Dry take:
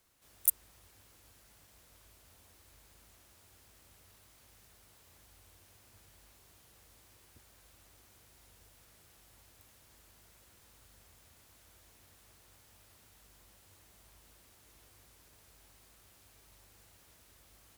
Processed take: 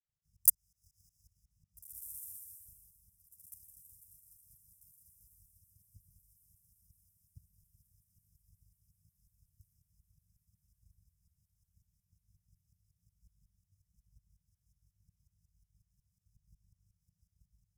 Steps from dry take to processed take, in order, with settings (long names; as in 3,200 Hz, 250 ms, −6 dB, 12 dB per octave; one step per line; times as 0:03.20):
high-shelf EQ 4,600 Hz −9.5 dB
transient designer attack +9 dB, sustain −8 dB
shaped tremolo saw up 5.5 Hz, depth 95%
linear-phase brick-wall band-stop 200–4,900 Hz
on a send: feedback delay with all-pass diffusion 1,751 ms, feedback 60%, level −14 dB
on the sum: multiband upward and downward expander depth 70%